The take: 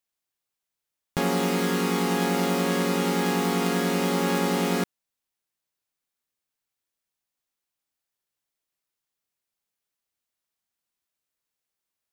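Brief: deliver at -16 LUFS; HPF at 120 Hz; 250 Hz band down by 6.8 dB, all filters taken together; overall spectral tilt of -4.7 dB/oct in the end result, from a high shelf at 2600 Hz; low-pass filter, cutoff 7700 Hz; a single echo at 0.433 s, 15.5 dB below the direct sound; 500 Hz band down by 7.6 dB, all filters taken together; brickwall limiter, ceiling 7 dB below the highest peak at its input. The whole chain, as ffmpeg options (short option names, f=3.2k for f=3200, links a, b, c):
-af "highpass=120,lowpass=7.7k,equalizer=f=250:t=o:g=-7,equalizer=f=500:t=o:g=-7,highshelf=f=2.6k:g=-5.5,alimiter=limit=-21.5dB:level=0:latency=1,aecho=1:1:433:0.168,volume=16dB"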